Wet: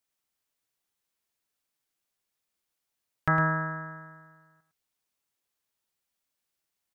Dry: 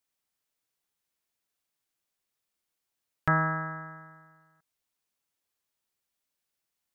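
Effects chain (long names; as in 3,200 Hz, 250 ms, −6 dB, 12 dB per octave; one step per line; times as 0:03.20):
single-tap delay 107 ms −9 dB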